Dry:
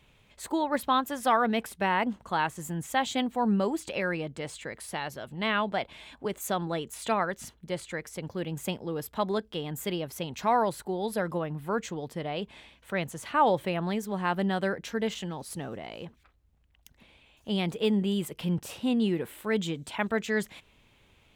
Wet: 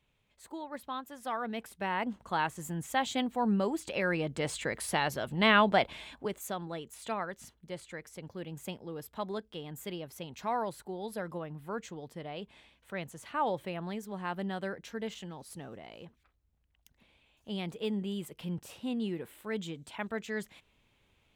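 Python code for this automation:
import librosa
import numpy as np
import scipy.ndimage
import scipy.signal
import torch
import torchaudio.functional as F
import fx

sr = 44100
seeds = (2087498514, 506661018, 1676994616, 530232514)

y = fx.gain(x, sr, db=fx.line((1.11, -13.5), (2.34, -3.0), (3.84, -3.0), (4.53, 4.5), (5.85, 4.5), (6.56, -8.0)))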